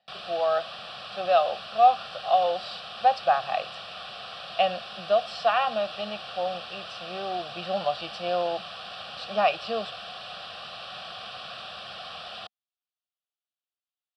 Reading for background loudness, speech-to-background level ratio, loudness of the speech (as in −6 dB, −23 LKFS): −38.5 LKFS, 11.5 dB, −27.0 LKFS